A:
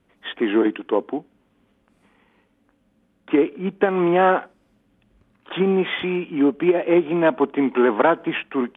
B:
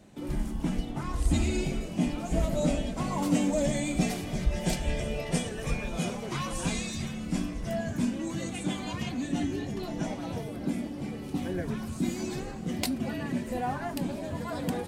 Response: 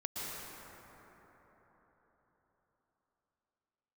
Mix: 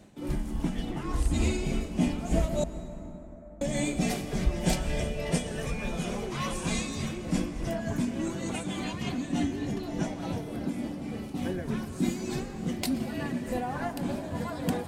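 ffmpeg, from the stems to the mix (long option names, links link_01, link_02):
-filter_complex "[0:a]acompressor=threshold=-21dB:ratio=6,adelay=500,volume=-17.5dB[link_01];[1:a]tremolo=f=3.4:d=0.51,volume=1dB,asplit=3[link_02][link_03][link_04];[link_02]atrim=end=2.64,asetpts=PTS-STARTPTS,afade=type=out:start_time=2.636:duration=0.004:curve=hsin[link_05];[link_03]atrim=start=2.64:end=3.61,asetpts=PTS-STARTPTS,volume=0[link_06];[link_04]atrim=start=3.61,asetpts=PTS-STARTPTS,afade=type=in:duration=0.004:curve=hsin[link_07];[link_05][link_06][link_07]concat=n=3:v=0:a=1,asplit=2[link_08][link_09];[link_09]volume=-11.5dB[link_10];[2:a]atrim=start_sample=2205[link_11];[link_10][link_11]afir=irnorm=-1:irlink=0[link_12];[link_01][link_08][link_12]amix=inputs=3:normalize=0"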